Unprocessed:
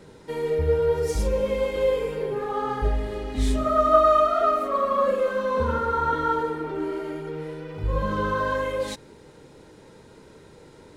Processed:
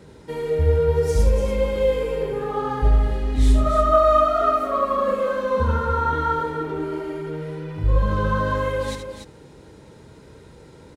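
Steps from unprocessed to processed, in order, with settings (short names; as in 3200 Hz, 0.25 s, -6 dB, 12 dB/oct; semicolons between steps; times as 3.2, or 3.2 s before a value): HPF 51 Hz; low shelf 100 Hz +12 dB; loudspeakers at several distances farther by 26 m -8 dB, 99 m -8 dB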